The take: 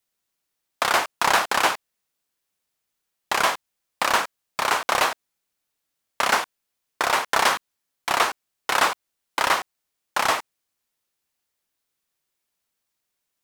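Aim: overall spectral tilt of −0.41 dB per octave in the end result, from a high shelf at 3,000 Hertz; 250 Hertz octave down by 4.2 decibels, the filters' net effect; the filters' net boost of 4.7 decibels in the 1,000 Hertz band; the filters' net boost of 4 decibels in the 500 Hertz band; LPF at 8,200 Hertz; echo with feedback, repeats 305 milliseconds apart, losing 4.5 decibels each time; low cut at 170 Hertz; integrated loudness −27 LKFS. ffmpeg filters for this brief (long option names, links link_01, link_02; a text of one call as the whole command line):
ffmpeg -i in.wav -af "highpass=170,lowpass=8200,equalizer=frequency=250:width_type=o:gain=-8.5,equalizer=frequency=500:width_type=o:gain=5,equalizer=frequency=1000:width_type=o:gain=5.5,highshelf=frequency=3000:gain=-6,aecho=1:1:305|610|915|1220|1525|1830|2135|2440|2745:0.596|0.357|0.214|0.129|0.0772|0.0463|0.0278|0.0167|0.01,volume=-7dB" out.wav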